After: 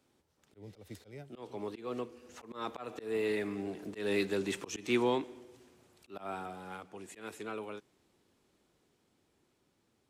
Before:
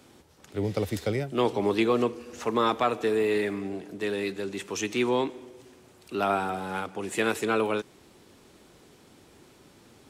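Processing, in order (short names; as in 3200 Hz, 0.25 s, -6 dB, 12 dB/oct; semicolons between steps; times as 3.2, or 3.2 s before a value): Doppler pass-by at 4.35, 6 m/s, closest 3.3 m; auto swell 0.164 s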